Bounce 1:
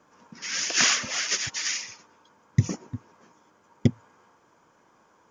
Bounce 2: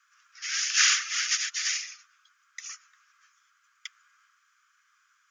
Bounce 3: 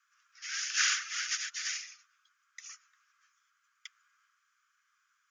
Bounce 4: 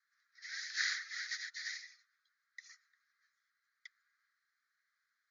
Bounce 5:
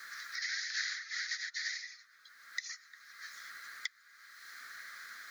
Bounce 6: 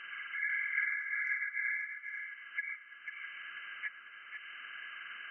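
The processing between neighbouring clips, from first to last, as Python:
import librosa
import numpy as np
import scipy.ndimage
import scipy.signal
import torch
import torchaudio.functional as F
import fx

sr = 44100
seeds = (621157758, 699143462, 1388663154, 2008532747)

y1 = scipy.signal.sosfilt(scipy.signal.butter(16, 1200.0, 'highpass', fs=sr, output='sos'), x)
y2 = fx.dynamic_eq(y1, sr, hz=1500.0, q=3.7, threshold_db=-46.0, ratio=4.0, max_db=5)
y2 = y2 * 10.0 ** (-7.5 / 20.0)
y3 = fx.double_bandpass(y2, sr, hz=2800.0, octaves=1.1)
y3 = y3 * 10.0 ** (1.0 / 20.0)
y4 = fx.band_squash(y3, sr, depth_pct=100)
y4 = y4 * 10.0 ** (5.0 / 20.0)
y5 = fx.freq_compress(y4, sr, knee_hz=1600.0, ratio=4.0)
y5 = fx.echo_tape(y5, sr, ms=492, feedback_pct=58, wet_db=-3, lp_hz=1600.0, drive_db=20.0, wow_cents=24)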